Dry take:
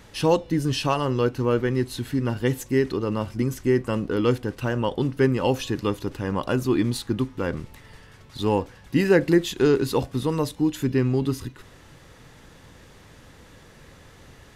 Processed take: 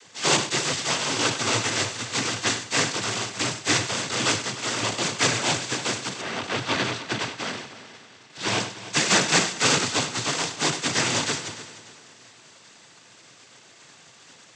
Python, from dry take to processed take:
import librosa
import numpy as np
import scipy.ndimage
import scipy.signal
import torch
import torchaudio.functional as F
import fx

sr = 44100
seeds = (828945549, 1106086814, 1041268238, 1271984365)

y = fx.spec_flatten(x, sr, power=0.2)
y = fx.lowpass(y, sr, hz=fx.line((6.2, 3200.0), (8.58, 6000.0)), slope=12, at=(6.2, 8.58), fade=0.02)
y = fx.noise_vocoder(y, sr, seeds[0], bands=16)
y = fx.echo_heads(y, sr, ms=100, heads='first and third', feedback_pct=52, wet_db=-16)
y = fx.sustainer(y, sr, db_per_s=110.0)